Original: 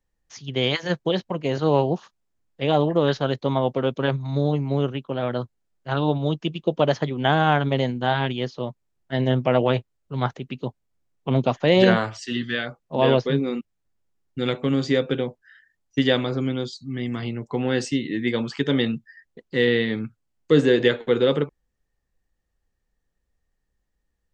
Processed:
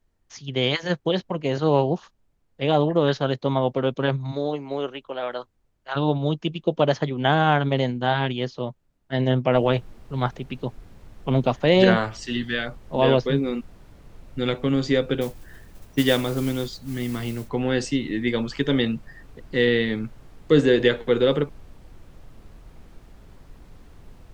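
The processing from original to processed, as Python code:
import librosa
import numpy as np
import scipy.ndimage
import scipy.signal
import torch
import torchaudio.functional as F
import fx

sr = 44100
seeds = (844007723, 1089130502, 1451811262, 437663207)

y = fx.highpass(x, sr, hz=fx.line((4.31, 290.0), (5.95, 810.0)), slope=12, at=(4.31, 5.95), fade=0.02)
y = fx.noise_floor_step(y, sr, seeds[0], at_s=9.54, before_db=-68, after_db=-43, tilt_db=6.0)
y = fx.mod_noise(y, sr, seeds[1], snr_db=18, at=(15.21, 17.49))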